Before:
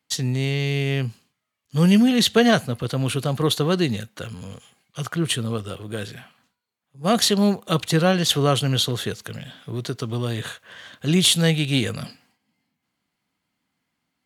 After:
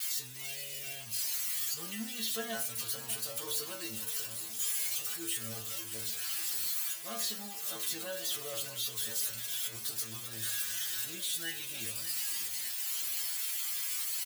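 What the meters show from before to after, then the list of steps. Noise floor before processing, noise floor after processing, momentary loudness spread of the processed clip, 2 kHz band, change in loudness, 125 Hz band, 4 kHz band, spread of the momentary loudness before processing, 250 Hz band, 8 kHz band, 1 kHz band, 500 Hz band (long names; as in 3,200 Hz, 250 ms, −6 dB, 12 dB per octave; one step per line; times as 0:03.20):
−79 dBFS, −43 dBFS, 5 LU, −13.0 dB, −12.5 dB, −30.0 dB, −12.5 dB, 18 LU, −27.5 dB, −3.5 dB, −20.0 dB, −22.5 dB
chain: spike at every zero crossing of −11 dBFS
noise gate with hold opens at −15 dBFS
low-shelf EQ 500 Hz −12 dB
brickwall limiter −14 dBFS, peak gain reduction 10 dB
stiff-string resonator 110 Hz, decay 0.41 s, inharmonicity 0.002
on a send: repeating echo 590 ms, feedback 43%, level −13 dB
on the sum: level −1 dB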